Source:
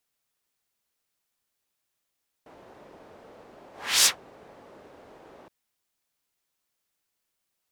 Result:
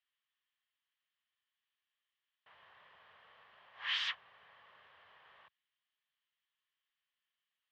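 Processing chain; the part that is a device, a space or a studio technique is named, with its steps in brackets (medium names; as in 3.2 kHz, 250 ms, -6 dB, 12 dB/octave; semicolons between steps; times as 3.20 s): scooped metal amplifier (valve stage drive 28 dB, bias 0.45; cabinet simulation 97–3600 Hz, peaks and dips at 1.1 kHz +9 dB, 1.8 kHz +10 dB, 3.1 kHz +10 dB; amplifier tone stack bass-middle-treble 10-0-10); trim -3.5 dB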